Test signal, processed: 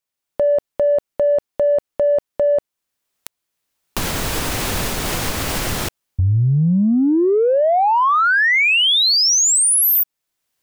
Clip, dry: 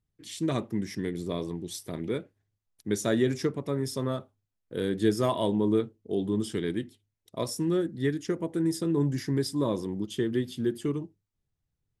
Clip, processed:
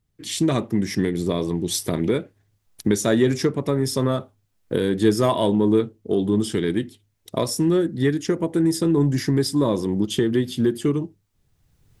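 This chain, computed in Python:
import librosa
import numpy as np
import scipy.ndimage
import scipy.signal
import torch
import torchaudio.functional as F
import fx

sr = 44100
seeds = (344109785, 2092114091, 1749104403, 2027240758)

p1 = fx.recorder_agc(x, sr, target_db=-18.5, rise_db_per_s=15.0, max_gain_db=30)
p2 = 10.0 ** (-22.0 / 20.0) * np.tanh(p1 / 10.0 ** (-22.0 / 20.0))
p3 = p1 + (p2 * librosa.db_to_amplitude(-9.5))
y = p3 * librosa.db_to_amplitude(5.0)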